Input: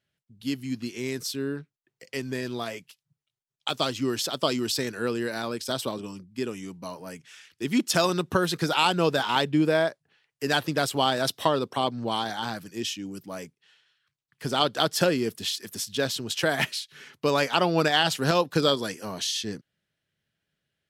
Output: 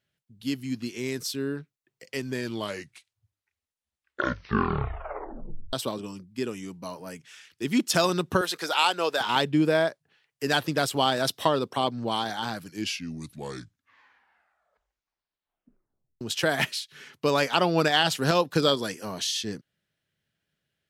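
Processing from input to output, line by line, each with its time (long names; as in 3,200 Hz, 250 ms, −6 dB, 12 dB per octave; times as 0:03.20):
0:02.30: tape stop 3.43 s
0:08.41–0:09.21: high-pass filter 500 Hz
0:12.51: tape stop 3.70 s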